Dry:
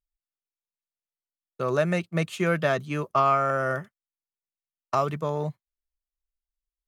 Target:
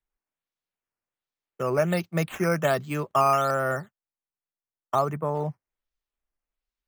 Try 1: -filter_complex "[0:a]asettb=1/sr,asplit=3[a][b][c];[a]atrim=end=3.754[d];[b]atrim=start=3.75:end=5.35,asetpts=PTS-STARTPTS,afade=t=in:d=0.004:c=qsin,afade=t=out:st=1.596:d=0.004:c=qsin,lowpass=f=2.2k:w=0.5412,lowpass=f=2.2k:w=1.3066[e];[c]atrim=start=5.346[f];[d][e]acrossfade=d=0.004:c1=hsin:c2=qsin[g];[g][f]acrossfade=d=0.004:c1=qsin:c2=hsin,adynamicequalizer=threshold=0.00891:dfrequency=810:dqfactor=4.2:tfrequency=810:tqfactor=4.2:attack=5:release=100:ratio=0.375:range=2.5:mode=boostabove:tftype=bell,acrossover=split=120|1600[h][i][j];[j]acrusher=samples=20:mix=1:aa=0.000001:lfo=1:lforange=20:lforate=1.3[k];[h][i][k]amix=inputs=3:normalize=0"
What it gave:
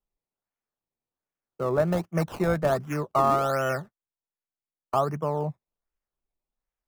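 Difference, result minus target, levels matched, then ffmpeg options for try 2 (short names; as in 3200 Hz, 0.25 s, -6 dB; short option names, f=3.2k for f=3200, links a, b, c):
decimation with a swept rate: distortion +25 dB
-filter_complex "[0:a]asettb=1/sr,asplit=3[a][b][c];[a]atrim=end=3.754[d];[b]atrim=start=3.75:end=5.35,asetpts=PTS-STARTPTS,afade=t=in:d=0.004:c=qsin,afade=t=out:st=1.596:d=0.004:c=qsin,lowpass=f=2.2k:w=0.5412,lowpass=f=2.2k:w=1.3066[e];[c]atrim=start=5.346[f];[d][e]acrossfade=d=0.004:c1=hsin:c2=qsin[g];[g][f]acrossfade=d=0.004:c1=qsin:c2=hsin,adynamicequalizer=threshold=0.00891:dfrequency=810:dqfactor=4.2:tfrequency=810:tqfactor=4.2:attack=5:release=100:ratio=0.375:range=2.5:mode=boostabove:tftype=bell,acrossover=split=120|1600[h][i][j];[j]acrusher=samples=8:mix=1:aa=0.000001:lfo=1:lforange=8:lforate=1.3[k];[h][i][k]amix=inputs=3:normalize=0"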